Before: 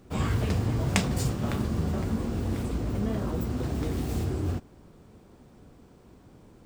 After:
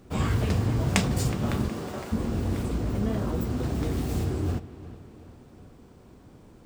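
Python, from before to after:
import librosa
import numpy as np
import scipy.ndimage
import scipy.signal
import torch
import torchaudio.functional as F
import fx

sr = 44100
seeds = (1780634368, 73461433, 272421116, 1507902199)

p1 = fx.highpass(x, sr, hz=fx.line((1.68, 220.0), (2.11, 550.0)), slope=12, at=(1.68, 2.11), fade=0.02)
p2 = p1 + fx.echo_wet_lowpass(p1, sr, ms=368, feedback_pct=51, hz=3700.0, wet_db=-16.0, dry=0)
y = p2 * 10.0 ** (1.5 / 20.0)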